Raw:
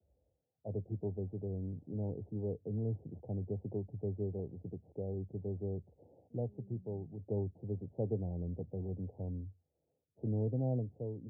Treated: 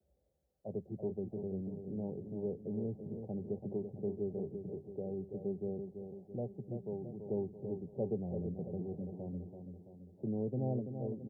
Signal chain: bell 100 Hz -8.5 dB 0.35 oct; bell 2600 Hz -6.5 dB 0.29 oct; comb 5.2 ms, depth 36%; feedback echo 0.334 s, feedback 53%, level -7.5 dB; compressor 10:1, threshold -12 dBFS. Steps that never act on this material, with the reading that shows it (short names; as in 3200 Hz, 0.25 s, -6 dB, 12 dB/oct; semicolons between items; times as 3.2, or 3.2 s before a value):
bell 2600 Hz: input band ends at 810 Hz; compressor, threshold -12 dBFS: input peak -24.5 dBFS